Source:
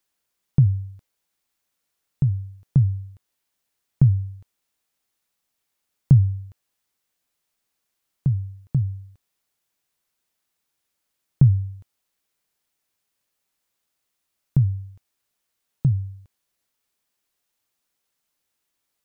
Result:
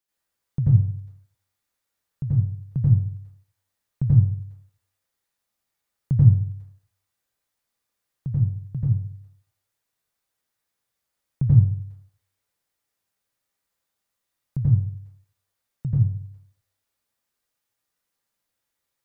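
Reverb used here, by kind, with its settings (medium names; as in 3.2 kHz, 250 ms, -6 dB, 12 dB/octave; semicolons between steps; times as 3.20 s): plate-style reverb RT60 0.56 s, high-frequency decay 0.5×, pre-delay 75 ms, DRR -7.5 dB; trim -9.5 dB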